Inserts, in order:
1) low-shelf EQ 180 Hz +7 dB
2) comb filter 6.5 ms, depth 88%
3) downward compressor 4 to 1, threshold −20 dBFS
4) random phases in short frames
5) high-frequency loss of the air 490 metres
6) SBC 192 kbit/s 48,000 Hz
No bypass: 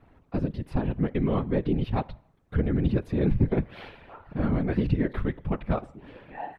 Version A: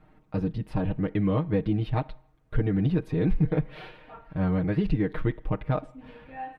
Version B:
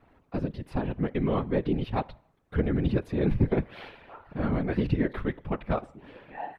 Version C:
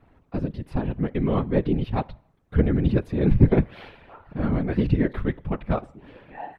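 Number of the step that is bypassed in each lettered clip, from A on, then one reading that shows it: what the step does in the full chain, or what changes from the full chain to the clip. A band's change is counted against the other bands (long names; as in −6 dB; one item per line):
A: 4, change in crest factor −1.5 dB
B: 1, 125 Hz band −3.5 dB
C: 3, average gain reduction 1.5 dB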